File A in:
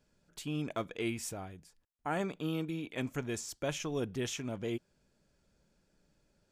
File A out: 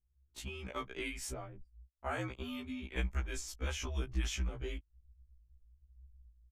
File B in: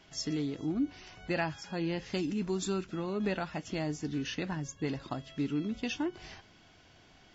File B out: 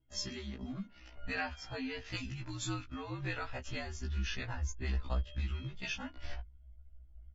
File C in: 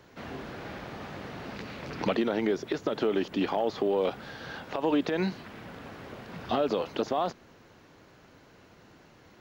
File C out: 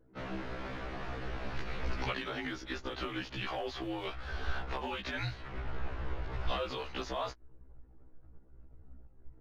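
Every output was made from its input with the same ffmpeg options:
-filter_complex "[0:a]anlmdn=0.01,aresample=32000,aresample=44100,highshelf=f=2400:g=-6.5,acrossover=split=1300[s0][s1];[s0]acompressor=threshold=0.00708:ratio=4[s2];[s2][s1]amix=inputs=2:normalize=0,afreqshift=-70,asubboost=boost=12:cutoff=52,afftfilt=real='re*1.73*eq(mod(b,3),0)':imag='im*1.73*eq(mod(b,3),0)':win_size=2048:overlap=0.75,volume=2"

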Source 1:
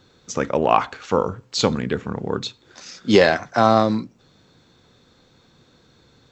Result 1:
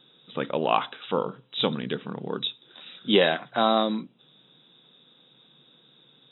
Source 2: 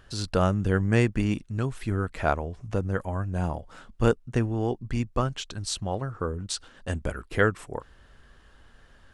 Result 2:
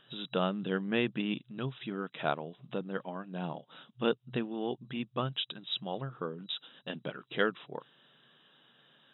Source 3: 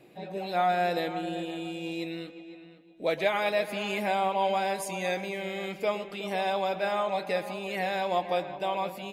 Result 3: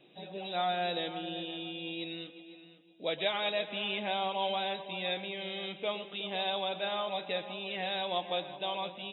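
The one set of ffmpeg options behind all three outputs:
-af "aexciter=amount=2.6:drive=9.5:freq=3000,afftfilt=real='re*between(b*sr/4096,120,3900)':imag='im*between(b*sr/4096,120,3900)':win_size=4096:overlap=0.75,volume=0.473"

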